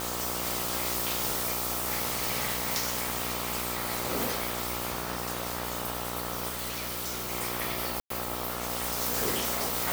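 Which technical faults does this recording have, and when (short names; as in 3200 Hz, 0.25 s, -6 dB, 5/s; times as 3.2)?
buzz 60 Hz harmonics 22 -37 dBFS
6.48–7.32 clipped -30 dBFS
8–8.1 gap 0.103 s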